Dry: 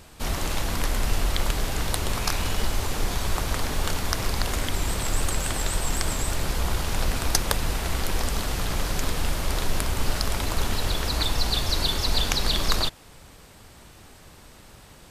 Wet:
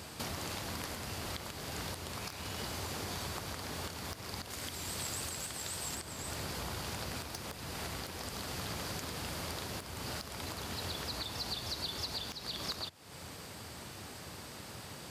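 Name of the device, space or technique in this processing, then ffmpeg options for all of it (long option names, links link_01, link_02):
broadcast voice chain: -filter_complex "[0:a]asettb=1/sr,asplit=3[link_01][link_02][link_03];[link_01]atrim=end=4.504[link_04];[link_02]atrim=start=4.5:end=5.95,asetpts=PTS-STARTPTS,afade=type=in:duration=0.004:curve=qsin,afade=type=out:start_time=1.446:duration=0.004:curve=qsin,highshelf=frequency=2600:gain=6[link_05];[link_03]atrim=start=5.946[link_06];[link_04][link_05]acrossfade=duration=0.004:curve1=hsin:curve2=qsin[link_07];[link_07][link_06]acrossfade=duration=0.004:curve1=qsin:curve2=hsin,highpass=frequency=79:width=0.5412,highpass=frequency=79:width=1.3066,deesser=0.35,acompressor=threshold=-41dB:ratio=5,equalizer=frequency=4700:width_type=o:width=0.22:gain=5,alimiter=level_in=4.5dB:limit=-24dB:level=0:latency=1:release=311,volume=-4.5dB,volume=2.5dB"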